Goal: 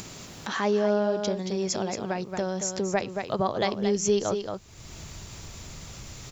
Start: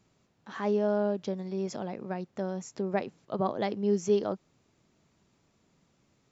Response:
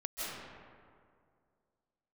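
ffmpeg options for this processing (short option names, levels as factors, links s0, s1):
-af "highshelf=f=3100:g=11.5,aecho=1:1:226:0.376,acompressor=threshold=0.0251:ratio=1.5,asubboost=boost=8:cutoff=79,acompressor=mode=upward:threshold=0.02:ratio=2.5,volume=2.24"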